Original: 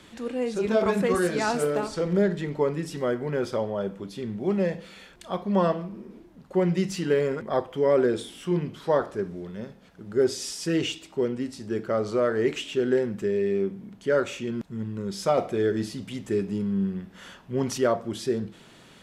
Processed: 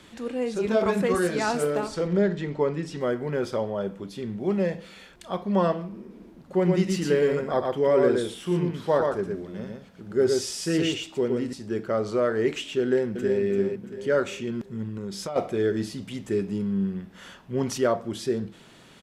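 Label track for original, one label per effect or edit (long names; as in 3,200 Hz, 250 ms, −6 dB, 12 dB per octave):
2.070000	3.010000	low-pass filter 6,600 Hz
6.080000	11.530000	single-tap delay 117 ms −3.5 dB
12.810000	13.410000	delay throw 340 ms, feedback 45%, level −6 dB
14.880000	15.360000	downward compressor 12 to 1, threshold −28 dBFS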